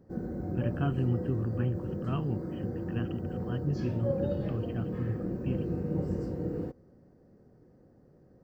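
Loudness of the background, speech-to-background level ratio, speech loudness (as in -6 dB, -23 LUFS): -35.0 LUFS, 0.0 dB, -35.0 LUFS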